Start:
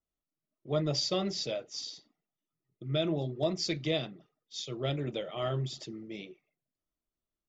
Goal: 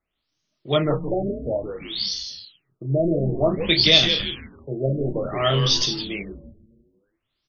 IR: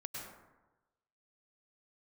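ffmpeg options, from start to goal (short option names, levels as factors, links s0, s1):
-filter_complex "[0:a]asettb=1/sr,asplit=3[s0][s1][s2];[s0]atrim=end=1.024[s3];[s1]atrim=start=1.02:end=1.44,asetpts=PTS-STARTPTS,afade=t=in:d=0.004:c=qsin,afade=t=out:st=0.416:d=0.004:c=qsin,lowshelf=f=260:g=-8[s4];[s2]atrim=start=1.436[s5];[s3][s4]acrossfade=d=0.004:c1=hsin:c2=qsin[s6];[s6][s5]acrossfade=d=0.004:c1=qsin:c2=hsin,asplit=6[s7][s8][s9][s10][s11][s12];[s8]adelay=166,afreqshift=-140,volume=0.447[s13];[s9]adelay=332,afreqshift=-280,volume=0.193[s14];[s10]adelay=498,afreqshift=-420,volume=0.0822[s15];[s11]adelay=664,afreqshift=-560,volume=0.0355[s16];[s12]adelay=830,afreqshift=-700,volume=0.0153[s17];[s7][s13][s14][s15][s16][s17]amix=inputs=6:normalize=0,crystalizer=i=7:c=0,equalizer=f=3500:t=o:w=0.55:g=2.5,asplit=2[s18][s19];[s19]asoftclip=type=tanh:threshold=0.168,volume=0.501[s20];[s18][s20]amix=inputs=2:normalize=0,asplit=2[s21][s22];[s22]adelay=30,volume=0.398[s23];[s21][s23]amix=inputs=2:normalize=0,afftfilt=real='re*lt(b*sr/1024,680*pow(6700/680,0.5+0.5*sin(2*PI*0.56*pts/sr)))':imag='im*lt(b*sr/1024,680*pow(6700/680,0.5+0.5*sin(2*PI*0.56*pts/sr)))':win_size=1024:overlap=0.75,volume=1.78"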